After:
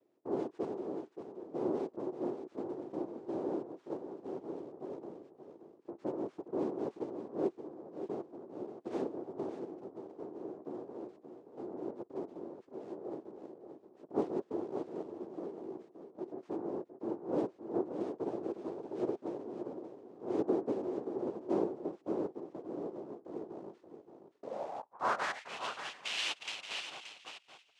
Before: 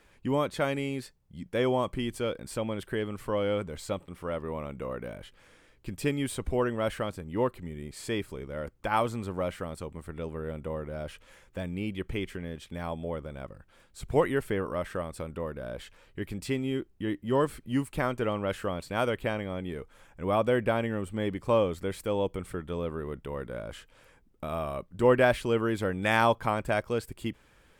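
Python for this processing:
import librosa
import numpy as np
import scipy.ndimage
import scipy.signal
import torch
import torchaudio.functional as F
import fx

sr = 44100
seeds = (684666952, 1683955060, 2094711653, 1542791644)

y = fx.noise_vocoder(x, sr, seeds[0], bands=2)
y = fx.filter_sweep_bandpass(y, sr, from_hz=360.0, to_hz=2800.0, start_s=24.27, end_s=25.61, q=3.5)
y = y + 10.0 ** (-9.0 / 20.0) * np.pad(y, (int(576 * sr / 1000.0), 0))[:len(y)]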